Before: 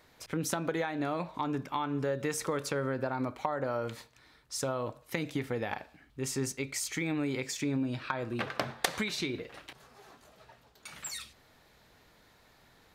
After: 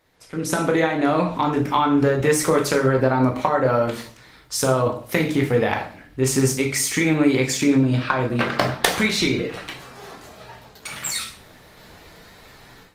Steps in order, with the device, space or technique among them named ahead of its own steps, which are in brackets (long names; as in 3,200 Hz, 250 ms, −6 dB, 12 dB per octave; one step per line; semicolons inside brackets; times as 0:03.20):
speakerphone in a meeting room (convolution reverb RT60 0.45 s, pre-delay 13 ms, DRR 2 dB; automatic gain control gain up to 16.5 dB; level −2.5 dB; Opus 20 kbit/s 48,000 Hz)